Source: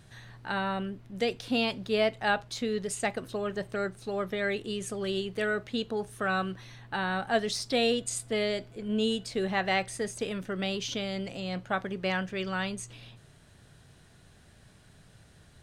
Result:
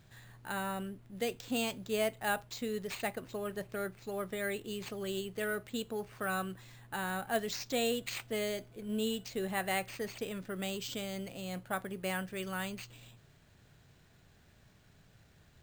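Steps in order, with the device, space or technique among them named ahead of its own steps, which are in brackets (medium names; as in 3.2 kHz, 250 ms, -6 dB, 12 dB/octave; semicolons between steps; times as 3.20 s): early companding sampler (sample-rate reducer 11 kHz, jitter 0%; companded quantiser 8-bit); trim -6 dB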